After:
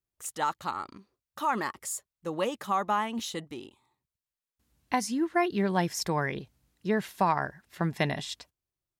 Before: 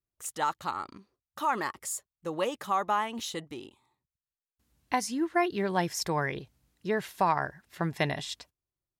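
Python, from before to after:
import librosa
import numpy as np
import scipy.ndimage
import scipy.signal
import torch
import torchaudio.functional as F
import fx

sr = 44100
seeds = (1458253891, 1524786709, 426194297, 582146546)

y = fx.dynamic_eq(x, sr, hz=210.0, q=2.5, threshold_db=-48.0, ratio=4.0, max_db=6)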